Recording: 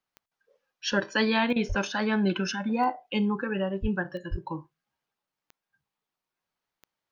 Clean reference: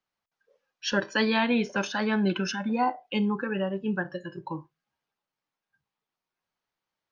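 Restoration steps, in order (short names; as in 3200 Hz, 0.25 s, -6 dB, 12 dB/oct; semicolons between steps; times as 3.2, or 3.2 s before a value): de-click; 1.68–1.8 HPF 140 Hz 24 dB/oct; 3.81–3.93 HPF 140 Hz 24 dB/oct; 4.3–4.42 HPF 140 Hz 24 dB/oct; interpolate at 1.53, 30 ms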